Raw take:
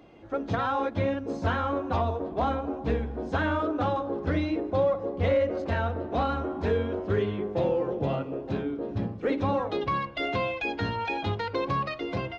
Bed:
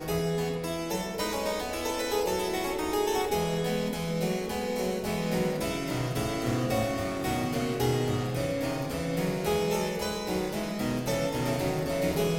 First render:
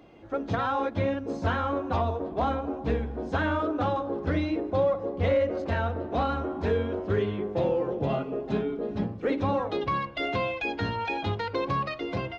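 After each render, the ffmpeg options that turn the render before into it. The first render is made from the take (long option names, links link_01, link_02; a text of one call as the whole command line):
ffmpeg -i in.wav -filter_complex "[0:a]asettb=1/sr,asplit=3[link_01][link_02][link_03];[link_01]atrim=end=8.094[link_04];[link_02]atrim=start=8.09:end=9.04,asetpts=PTS-STARTPTS,afade=type=in:duration=0.004:curve=qsin,afade=type=out:start_time=0.946:duration=0.004:curve=qsin,aecho=1:1:4.8:0.75,atrim=end_sample=41895[link_05];[link_03]atrim=start=9.036[link_06];[link_04][link_05]acrossfade=duration=0.004:curve1=hsin:curve2=qsin[link_07];[link_07][link_06]acrossfade=duration=0.004:curve1=qsin:curve2=hsin" out.wav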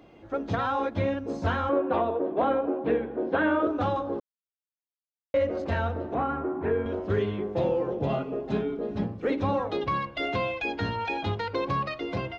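ffmpeg -i in.wav -filter_complex "[0:a]asettb=1/sr,asplit=3[link_01][link_02][link_03];[link_01]atrim=end=1.694[link_04];[link_02]atrim=start=1.69:end=3.67,asetpts=PTS-STARTPTS,afade=type=in:duration=0.004:curve=qsin,afade=type=out:start_time=1.976:duration=0.004:curve=qsin,highpass=190,equalizer=frequency=340:width_type=q:width=4:gain=9,equalizer=frequency=530:width_type=q:width=4:gain=7,equalizer=frequency=1600:width_type=q:width=4:gain=3,lowpass=frequency=3300:width=0.5412,lowpass=frequency=3300:width=1.3066[link_05];[link_03]atrim=start=3.666[link_06];[link_04][link_05]acrossfade=duration=0.004:curve1=hsin:curve2=qsin[link_07];[link_07][link_06]acrossfade=duration=0.004:curve1=qsin:curve2=hsin,asettb=1/sr,asplit=3[link_08][link_09][link_10];[link_08]atrim=end=6.144[link_11];[link_09]atrim=start=6.14:end=6.86,asetpts=PTS-STARTPTS,afade=type=in:duration=0.004:curve=qsin,afade=type=out:start_time=0.716:duration=0.004:curve=qsin,highpass=120,equalizer=frequency=130:width_type=q:width=4:gain=8,equalizer=frequency=190:width_type=q:width=4:gain=-7,equalizer=frequency=360:width_type=q:width=4:gain=5,equalizer=frequency=570:width_type=q:width=4:gain=-5,lowpass=frequency=2200:width=0.5412,lowpass=frequency=2200:width=1.3066[link_12];[link_10]atrim=start=6.856[link_13];[link_11][link_12]acrossfade=duration=0.004:curve1=hsin:curve2=qsin[link_14];[link_14][link_13]acrossfade=duration=0.004:curve1=qsin:curve2=hsin,asplit=3[link_15][link_16][link_17];[link_15]atrim=end=4.2,asetpts=PTS-STARTPTS,afade=type=out:start_time=4.196:duration=0.004:curve=hsin[link_18];[link_16]atrim=start=4.2:end=5.34,asetpts=PTS-STARTPTS,volume=0[link_19];[link_17]atrim=start=5.34,asetpts=PTS-STARTPTS,afade=type=in:duration=0.004:curve=hsin[link_20];[link_18][link_19][link_20]concat=n=3:v=0:a=1" out.wav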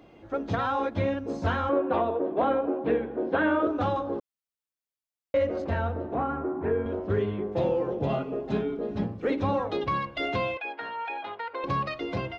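ffmpeg -i in.wav -filter_complex "[0:a]asettb=1/sr,asplit=3[link_01][link_02][link_03];[link_01]atrim=end=5.664[link_04];[link_02]atrim=start=5.66:end=7.52,asetpts=PTS-STARTPTS,afade=type=in:duration=0.004:curve=qsin,afade=type=out:start_time=1.856:duration=0.004:curve=qsin,highshelf=frequency=2600:gain=-8.5[link_05];[link_03]atrim=start=7.516[link_06];[link_04][link_05]acrossfade=duration=0.004:curve1=hsin:curve2=qsin[link_07];[link_07][link_06]acrossfade=duration=0.004:curve1=qsin:curve2=hsin,asettb=1/sr,asplit=3[link_08][link_09][link_10];[link_08]atrim=end=10.574[link_11];[link_09]atrim=start=10.57:end=11.64,asetpts=PTS-STARTPTS,afade=type=in:duration=0.004:curve=qsin,afade=type=out:start_time=1.066:duration=0.004:curve=qsin,highpass=700,lowpass=2200[link_12];[link_10]atrim=start=11.636[link_13];[link_11][link_12]acrossfade=duration=0.004:curve1=hsin:curve2=qsin[link_14];[link_14][link_13]acrossfade=duration=0.004:curve1=qsin:curve2=hsin" out.wav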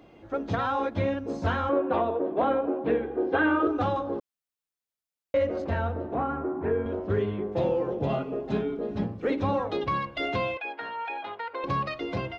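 ffmpeg -i in.wav -filter_complex "[0:a]asettb=1/sr,asplit=3[link_01][link_02][link_03];[link_01]atrim=end=3.034[link_04];[link_02]atrim=start=3.03:end=3.82,asetpts=PTS-STARTPTS,afade=type=in:duration=0.004:curve=qsin,afade=type=out:start_time=0.786:duration=0.004:curve=qsin,aecho=1:1:2.5:0.54,atrim=end_sample=34839[link_05];[link_03]atrim=start=3.816[link_06];[link_04][link_05]acrossfade=duration=0.004:curve1=hsin:curve2=qsin[link_07];[link_07][link_06]acrossfade=duration=0.004:curve1=qsin:curve2=hsin" out.wav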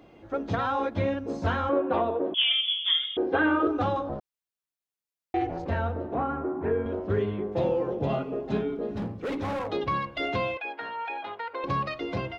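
ffmpeg -i in.wav -filter_complex "[0:a]asettb=1/sr,asplit=3[link_01][link_02][link_03];[link_01]atrim=end=2.344[link_04];[link_02]atrim=start=2.34:end=3.17,asetpts=PTS-STARTPTS,afade=type=in:duration=0.004:curve=qsin,afade=type=out:start_time=0.826:duration=0.004:curve=qsin,lowpass=frequency=3100:width_type=q:width=0.5098,lowpass=frequency=3100:width_type=q:width=0.6013,lowpass=frequency=3100:width_type=q:width=0.9,lowpass=frequency=3100:width_type=q:width=2.563,afreqshift=-3700[link_05];[link_03]atrim=start=3.166[link_06];[link_04][link_05]acrossfade=duration=0.004:curve1=hsin:curve2=qsin[link_07];[link_07][link_06]acrossfade=duration=0.004:curve1=qsin:curve2=hsin,asettb=1/sr,asplit=3[link_08][link_09][link_10];[link_08]atrim=end=4.094[link_11];[link_09]atrim=start=4.09:end=5.66,asetpts=PTS-STARTPTS,afade=type=in:duration=0.004:curve=qsin,afade=type=out:start_time=1.566:duration=0.004:curve=qsin,aeval=exprs='val(0)*sin(2*PI*200*n/s)':channel_layout=same[link_12];[link_10]atrim=start=5.656[link_13];[link_11][link_12]acrossfade=duration=0.004:curve1=hsin:curve2=qsin[link_14];[link_14][link_13]acrossfade=duration=0.004:curve1=qsin:curve2=hsin,asettb=1/sr,asplit=3[link_15][link_16][link_17];[link_15]atrim=end=8.904[link_18];[link_16]atrim=start=8.9:end=9.7,asetpts=PTS-STARTPTS,afade=type=in:duration=0.004:curve=qsin,afade=type=out:start_time=0.796:duration=0.004:curve=qsin,asoftclip=type=hard:threshold=-28dB[link_19];[link_17]atrim=start=9.696[link_20];[link_18][link_19]acrossfade=duration=0.004:curve1=hsin:curve2=qsin[link_21];[link_21][link_20]acrossfade=duration=0.004:curve1=qsin:curve2=hsin" out.wav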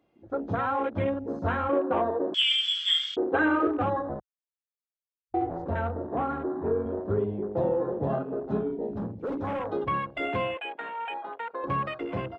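ffmpeg -i in.wav -af "afwtdn=0.0141,lowshelf=frequency=81:gain=-5" out.wav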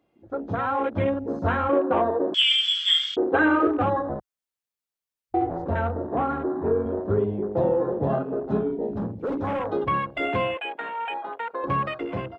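ffmpeg -i in.wav -af "dynaudnorm=framelen=460:gausssize=3:maxgain=4dB" out.wav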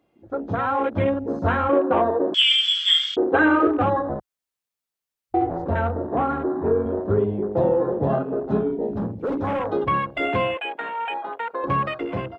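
ffmpeg -i in.wav -af "volume=2.5dB" out.wav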